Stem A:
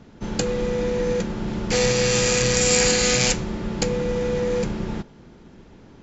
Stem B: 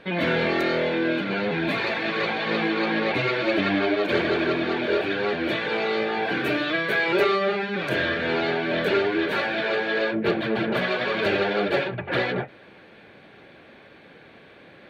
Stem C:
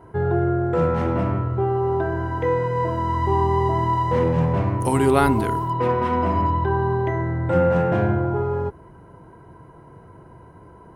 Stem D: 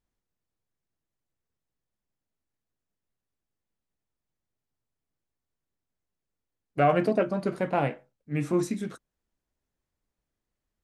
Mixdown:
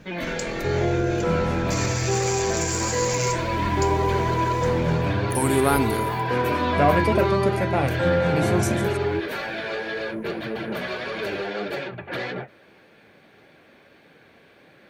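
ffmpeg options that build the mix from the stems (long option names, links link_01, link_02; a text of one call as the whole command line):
ffmpeg -i stem1.wav -i stem2.wav -i stem3.wav -i stem4.wav -filter_complex "[0:a]acompressor=threshold=-22dB:ratio=6,aphaser=in_gain=1:out_gain=1:delay=3.5:decay=0.39:speed=1.9:type=triangular,volume=-1.5dB[link_01];[1:a]volume=0dB[link_02];[2:a]adelay=500,volume=-3dB[link_03];[3:a]volume=2dB[link_04];[link_01][link_02]amix=inputs=2:normalize=0,flanger=delay=6.4:depth=6.6:regen=74:speed=1.7:shape=sinusoidal,alimiter=limit=-20dB:level=0:latency=1,volume=0dB[link_05];[link_03][link_04][link_05]amix=inputs=3:normalize=0,aexciter=amount=2.2:drive=7.4:freq=5100" out.wav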